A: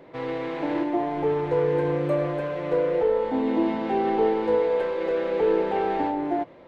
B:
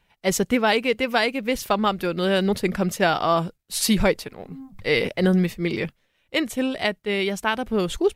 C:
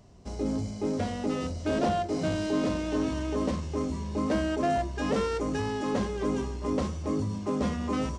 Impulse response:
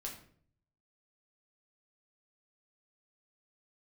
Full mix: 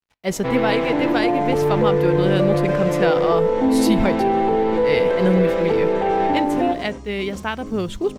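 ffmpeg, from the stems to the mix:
-filter_complex "[0:a]acontrast=75,adelay=300,volume=1.06,asplit=2[s0][s1];[s1]volume=0.376[s2];[1:a]highshelf=f=5200:g=-5,acrusher=bits=8:mix=0:aa=0.5,volume=0.708,asplit=2[s3][s4];[s4]volume=0.141[s5];[2:a]highshelf=f=4600:g=7.5,adelay=550,volume=0.376[s6];[s0][s6]amix=inputs=2:normalize=0,alimiter=limit=0.168:level=0:latency=1:release=73,volume=1[s7];[3:a]atrim=start_sample=2205[s8];[s2][s5]amix=inputs=2:normalize=0[s9];[s9][s8]afir=irnorm=-1:irlink=0[s10];[s3][s7][s10]amix=inputs=3:normalize=0,lowshelf=f=210:g=5"

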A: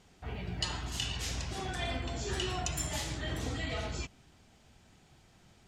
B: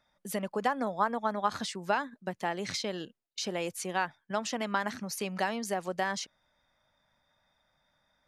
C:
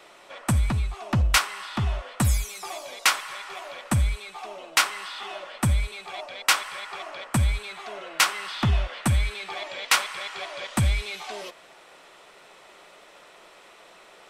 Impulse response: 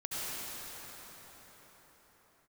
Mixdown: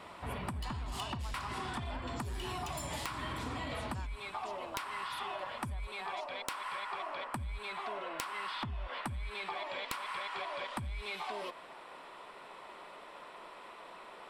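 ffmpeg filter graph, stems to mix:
-filter_complex "[0:a]highpass=59,aeval=exprs='0.141*sin(PI/2*2*val(0)/0.141)':c=same,volume=0.282[s0];[1:a]highpass=730,volume=0.188[s1];[2:a]highshelf=f=5000:g=-10,acompressor=threshold=0.0631:ratio=3,volume=0.596[s2];[s0][s2]amix=inputs=2:normalize=0,aeval=exprs='0.141*(cos(1*acos(clip(val(0)/0.141,-1,1)))-cos(1*PI/2))+0.0141*(cos(5*acos(clip(val(0)/0.141,-1,1)))-cos(5*PI/2))':c=same,acompressor=threshold=0.0282:ratio=6,volume=1[s3];[s1][s3]amix=inputs=2:normalize=0,equalizer=f=250:t=o:w=0.33:g=5,equalizer=f=1000:t=o:w=0.33:g=9,equalizer=f=6300:t=o:w=0.33:g=-9,equalizer=f=10000:t=o:w=0.33:g=4,aeval=exprs='(mod(8.41*val(0)+1,2)-1)/8.41':c=same,acompressor=threshold=0.0158:ratio=6"

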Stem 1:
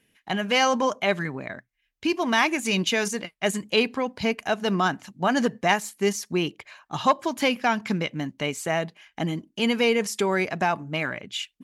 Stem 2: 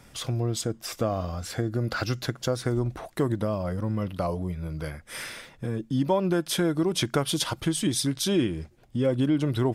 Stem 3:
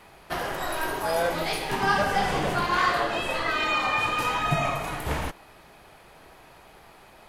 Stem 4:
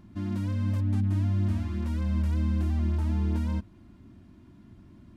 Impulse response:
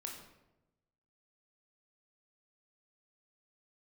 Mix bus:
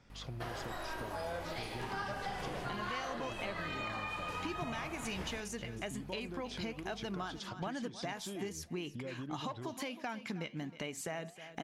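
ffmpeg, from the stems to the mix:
-filter_complex "[0:a]acompressor=threshold=0.0141:ratio=1.5,flanger=delay=3:depth=7.1:regen=-84:speed=1.3:shape=sinusoidal,adelay=2400,volume=1.19,asplit=2[s0][s1];[s1]volume=0.106[s2];[1:a]lowpass=f=6100:w=0.5412,lowpass=f=6100:w=1.3066,acompressor=threshold=0.0398:ratio=6,volume=0.266[s3];[2:a]acrossover=split=8200[s4][s5];[s5]acompressor=threshold=0.00316:ratio=4:attack=1:release=60[s6];[s4][s6]amix=inputs=2:normalize=0,aeval=exprs='val(0)+0.01*(sin(2*PI*50*n/s)+sin(2*PI*2*50*n/s)/2+sin(2*PI*3*50*n/s)/3+sin(2*PI*4*50*n/s)/4+sin(2*PI*5*50*n/s)/5)':c=same,adelay=100,volume=0.316[s7];[s0]acompressor=mode=upward:threshold=0.00794:ratio=2.5,alimiter=limit=0.0668:level=0:latency=1:release=431,volume=1[s8];[s2]aecho=0:1:314|628|942:1|0.18|0.0324[s9];[s3][s7][s8][s9]amix=inputs=4:normalize=0,acompressor=threshold=0.0126:ratio=3"

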